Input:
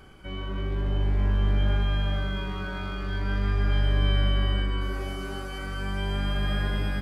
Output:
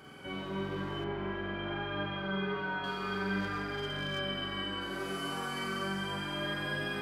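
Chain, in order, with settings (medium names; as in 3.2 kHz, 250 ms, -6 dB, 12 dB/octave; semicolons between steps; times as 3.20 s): high-pass 160 Hz 12 dB/octave; gain riding within 4 dB 0.5 s; flutter echo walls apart 8 m, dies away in 1.3 s; flange 0.37 Hz, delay 6.3 ms, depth 7.2 ms, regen +70%; 1.04–2.84 s: low-pass 2.8 kHz 12 dB/octave; 3.40–4.19 s: hard clipper -30 dBFS, distortion -28 dB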